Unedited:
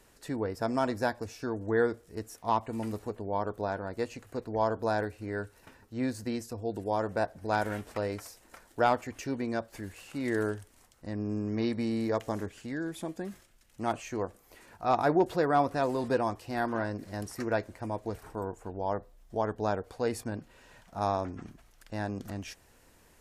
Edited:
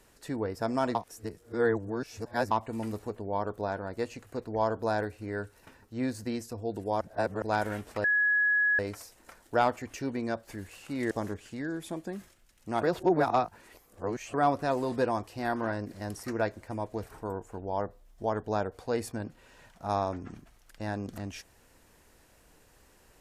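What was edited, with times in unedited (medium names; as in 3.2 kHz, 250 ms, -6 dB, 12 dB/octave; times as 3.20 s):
0.95–2.51 s: reverse
7.01–7.42 s: reverse
8.04 s: add tone 1.68 kHz -22 dBFS 0.75 s
10.36–12.23 s: delete
13.95–15.46 s: reverse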